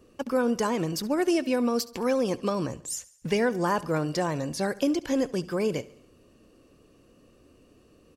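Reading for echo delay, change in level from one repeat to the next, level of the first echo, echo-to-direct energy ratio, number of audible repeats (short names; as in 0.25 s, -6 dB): 70 ms, -5.0 dB, -20.0 dB, -18.5 dB, 3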